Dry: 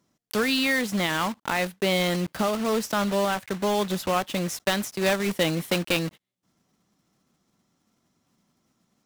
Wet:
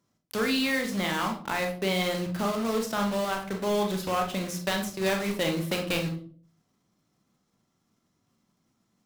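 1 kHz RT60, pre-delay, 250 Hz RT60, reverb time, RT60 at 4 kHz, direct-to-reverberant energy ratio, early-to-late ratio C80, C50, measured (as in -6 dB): 0.40 s, 26 ms, 0.65 s, 0.50 s, 0.30 s, 2.5 dB, 13.5 dB, 8.0 dB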